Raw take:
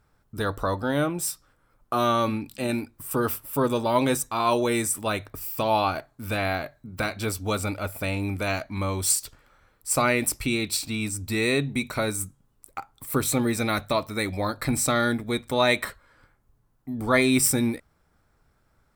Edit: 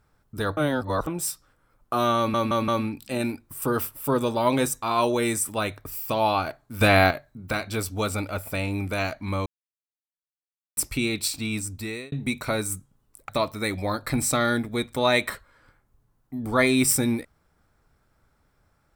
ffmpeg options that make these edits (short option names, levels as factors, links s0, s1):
-filter_complex "[0:a]asplit=12[s0][s1][s2][s3][s4][s5][s6][s7][s8][s9][s10][s11];[s0]atrim=end=0.572[s12];[s1]atrim=start=0.568:end=1.072,asetpts=PTS-STARTPTS,areverse[s13];[s2]atrim=start=1.068:end=2.342[s14];[s3]atrim=start=2.168:end=2.342[s15];[s4]atrim=start=2.168:end=2.342[s16];[s5]atrim=start=2.168:end=6.302[s17];[s6]atrim=start=6.298:end=6.602,asetpts=PTS-STARTPTS,volume=2.82[s18];[s7]atrim=start=6.598:end=8.95,asetpts=PTS-STARTPTS,afade=t=out:st=2.348:d=0.004:c=hsin[s19];[s8]atrim=start=8.95:end=10.26,asetpts=PTS-STARTPTS,volume=0[s20];[s9]atrim=start=10.26:end=11.61,asetpts=PTS-STARTPTS,afade=t=in:d=0.004:c=hsin,afade=t=out:st=0.83:d=0.52[s21];[s10]atrim=start=11.61:end=12.782,asetpts=PTS-STARTPTS,afade=t=in:d=0.004:c=hsin[s22];[s11]atrim=start=13.838[s23];[s12][s13]acrossfade=d=0.004:c1=hsin:c2=hsin[s24];[s24][s14]acrossfade=d=0.004:c1=hsin:c2=hsin[s25];[s25][s15]acrossfade=d=0.004:c1=hsin:c2=hsin[s26];[s26][s16]acrossfade=d=0.004:c1=hsin:c2=hsin[s27];[s27][s17]acrossfade=d=0.004:c1=hsin:c2=hsin[s28];[s28][s18]acrossfade=d=0.004:c1=hsin:c2=hsin[s29];[s19][s20][s21][s22]concat=n=4:v=0:a=1[s30];[s29][s30]acrossfade=d=0.004:c1=hsin:c2=hsin[s31];[s31][s23]acrossfade=d=0.004:c1=hsin:c2=hsin"